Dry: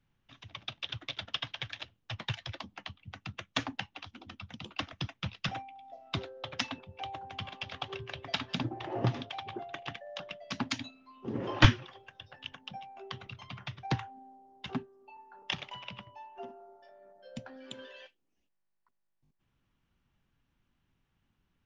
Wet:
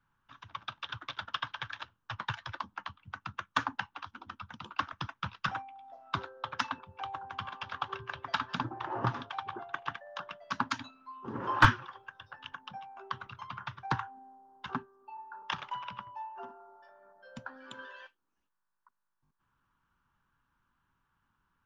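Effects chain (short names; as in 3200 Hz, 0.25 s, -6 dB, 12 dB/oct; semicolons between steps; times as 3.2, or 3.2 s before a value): band shelf 1200 Hz +14 dB 1.1 oct; in parallel at -4 dB: overloaded stage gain 12.5 dB; on the sum: gain -8.5 dB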